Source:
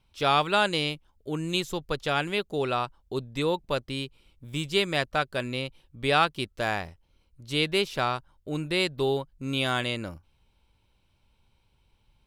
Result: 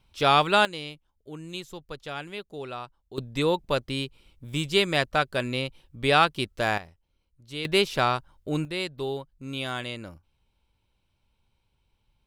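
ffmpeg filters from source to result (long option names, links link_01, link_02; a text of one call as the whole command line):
ffmpeg -i in.wav -af "asetnsamples=nb_out_samples=441:pad=0,asendcmd='0.65 volume volume -9dB;3.18 volume volume 2.5dB;6.78 volume volume -8dB;7.65 volume volume 3.5dB;8.65 volume volume -5dB',volume=3dB" out.wav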